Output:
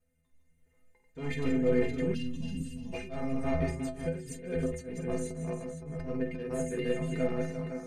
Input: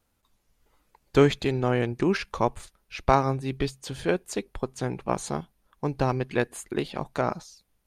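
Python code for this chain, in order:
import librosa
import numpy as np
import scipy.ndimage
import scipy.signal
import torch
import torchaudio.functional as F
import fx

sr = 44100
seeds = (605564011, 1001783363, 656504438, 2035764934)

y = fx.reverse_delay(x, sr, ms=332, wet_db=-4.0)
y = fx.graphic_eq(y, sr, hz=(125, 500, 1000, 2000, 4000, 8000), db=(6, 8, -7, 11, -8, 8))
y = fx.echo_multitap(y, sr, ms=(49, 350, 512), db=(-9.0, -11.0, -11.0))
y = 10.0 ** (-12.5 / 20.0) * np.tanh(y / 10.0 ** (-12.5 / 20.0))
y = fx.bass_treble(y, sr, bass_db=10, treble_db=-4)
y = y + 0.6 * np.pad(y, (int(4.3 * sr / 1000.0), 0))[:len(y)]
y = fx.auto_swell(y, sr, attack_ms=171.0)
y = fx.stiff_resonator(y, sr, f0_hz=76.0, decay_s=0.62, stiffness=0.03)
y = fx.spec_box(y, sr, start_s=2.14, length_s=0.79, low_hz=280.0, high_hz=2500.0, gain_db=-21)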